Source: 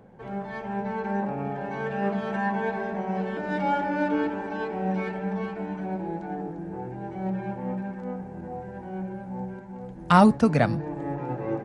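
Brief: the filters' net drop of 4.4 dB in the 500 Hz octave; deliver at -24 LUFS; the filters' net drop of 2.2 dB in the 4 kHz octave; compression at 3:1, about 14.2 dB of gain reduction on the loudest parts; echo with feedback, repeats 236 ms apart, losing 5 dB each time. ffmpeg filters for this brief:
-af "equalizer=f=500:t=o:g=-5.5,equalizer=f=4000:t=o:g=-3,acompressor=threshold=0.0224:ratio=3,aecho=1:1:236|472|708|944|1180|1416|1652:0.562|0.315|0.176|0.0988|0.0553|0.031|0.0173,volume=3.35"

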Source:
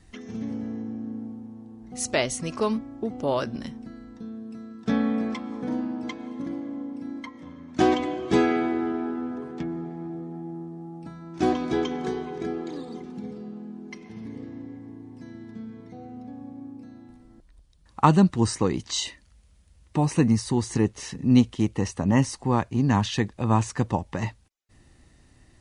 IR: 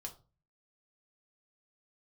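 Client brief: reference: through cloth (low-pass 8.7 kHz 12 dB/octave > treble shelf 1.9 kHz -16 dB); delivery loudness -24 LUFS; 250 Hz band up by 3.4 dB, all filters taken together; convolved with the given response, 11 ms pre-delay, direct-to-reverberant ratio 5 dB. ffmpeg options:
-filter_complex "[0:a]equalizer=f=250:t=o:g=4.5,asplit=2[s0][s1];[1:a]atrim=start_sample=2205,adelay=11[s2];[s1][s2]afir=irnorm=-1:irlink=0,volume=0.841[s3];[s0][s3]amix=inputs=2:normalize=0,lowpass=8700,highshelf=f=1900:g=-16,volume=0.944"

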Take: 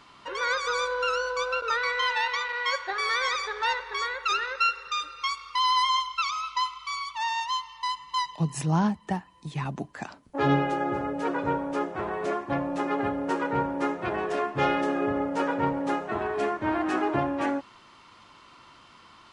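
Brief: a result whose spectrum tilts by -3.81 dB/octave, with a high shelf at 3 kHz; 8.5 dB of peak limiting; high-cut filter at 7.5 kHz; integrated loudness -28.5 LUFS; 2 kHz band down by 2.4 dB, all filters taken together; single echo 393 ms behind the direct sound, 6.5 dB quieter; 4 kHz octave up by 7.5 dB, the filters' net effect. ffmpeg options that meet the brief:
-af "lowpass=7500,equalizer=f=2000:t=o:g=-8,highshelf=f=3000:g=5.5,equalizer=f=4000:t=o:g=8,alimiter=limit=0.106:level=0:latency=1,aecho=1:1:393:0.473,volume=0.944"

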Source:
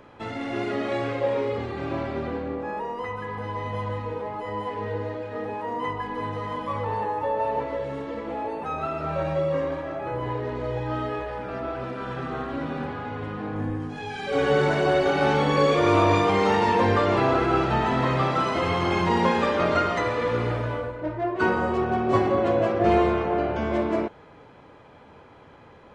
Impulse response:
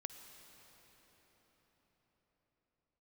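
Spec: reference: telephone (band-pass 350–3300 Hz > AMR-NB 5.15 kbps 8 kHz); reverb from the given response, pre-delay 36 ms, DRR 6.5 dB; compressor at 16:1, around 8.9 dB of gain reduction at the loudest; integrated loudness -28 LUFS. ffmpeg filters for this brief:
-filter_complex "[0:a]acompressor=threshold=0.0631:ratio=16,asplit=2[s0][s1];[1:a]atrim=start_sample=2205,adelay=36[s2];[s1][s2]afir=irnorm=-1:irlink=0,volume=0.668[s3];[s0][s3]amix=inputs=2:normalize=0,highpass=350,lowpass=3300,volume=1.68" -ar 8000 -c:a libopencore_amrnb -b:a 5150

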